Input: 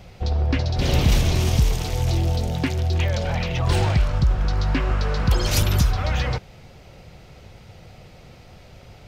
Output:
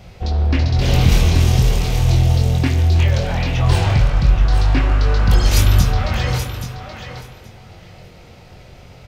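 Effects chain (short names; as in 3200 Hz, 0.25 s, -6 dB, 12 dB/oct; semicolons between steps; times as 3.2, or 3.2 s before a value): doubler 23 ms -4.5 dB; thinning echo 0.827 s, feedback 15%, high-pass 170 Hz, level -9 dB; spring tank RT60 1.5 s, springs 40/49 ms, chirp 35 ms, DRR 7 dB; gain +1.5 dB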